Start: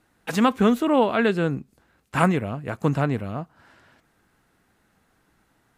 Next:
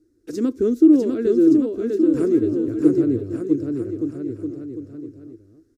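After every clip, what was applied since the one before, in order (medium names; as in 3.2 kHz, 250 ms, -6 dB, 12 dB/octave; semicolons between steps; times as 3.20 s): FFT filter 110 Hz 0 dB, 180 Hz -17 dB, 330 Hz +15 dB, 830 Hz -30 dB, 1.4 kHz -18 dB, 3 kHz -23 dB, 5.4 kHz -3 dB, 10 kHz -11 dB; on a send: bouncing-ball echo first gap 650 ms, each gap 0.8×, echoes 5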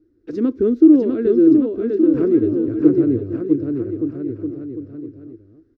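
distance through air 290 m; trim +3 dB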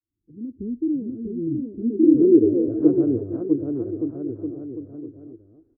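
fade-in on the opening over 0.79 s; low-pass sweep 160 Hz -> 790 Hz, 1.61–2.91 s; trim -5 dB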